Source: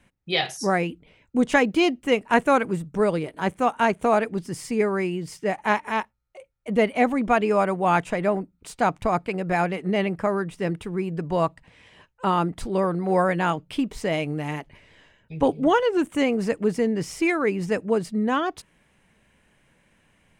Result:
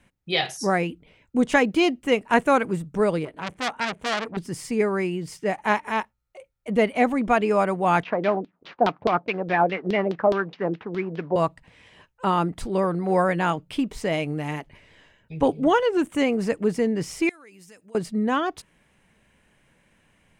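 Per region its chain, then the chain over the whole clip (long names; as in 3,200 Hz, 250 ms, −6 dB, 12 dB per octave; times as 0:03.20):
0:03.25–0:04.37: low-pass filter 3,200 Hz 6 dB per octave + saturating transformer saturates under 3,200 Hz
0:08.03–0:11.36: variable-slope delta modulation 32 kbit/s + high-pass filter 200 Hz + auto-filter low-pass saw down 4.8 Hz 420–3,900 Hz
0:17.29–0:17.95: first-order pre-emphasis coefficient 0.9 + downward compressor, threshold −45 dBFS
whole clip: no processing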